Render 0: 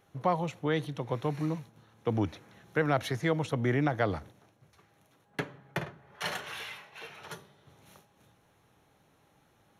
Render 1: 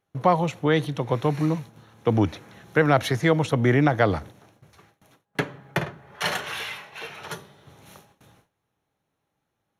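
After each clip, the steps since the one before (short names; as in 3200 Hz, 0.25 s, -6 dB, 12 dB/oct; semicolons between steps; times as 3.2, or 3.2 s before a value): gate with hold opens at -53 dBFS; gain +8.5 dB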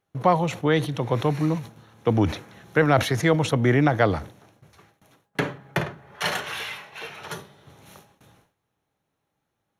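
sustainer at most 140 dB/s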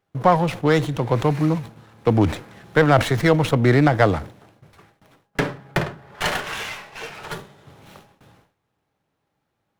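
running maximum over 5 samples; gain +3.5 dB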